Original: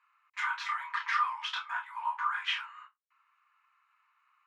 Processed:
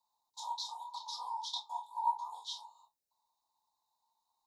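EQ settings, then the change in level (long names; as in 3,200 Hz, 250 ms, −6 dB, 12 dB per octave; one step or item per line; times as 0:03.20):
Chebyshev band-stop filter 920–3,700 Hz, order 5
+6.0 dB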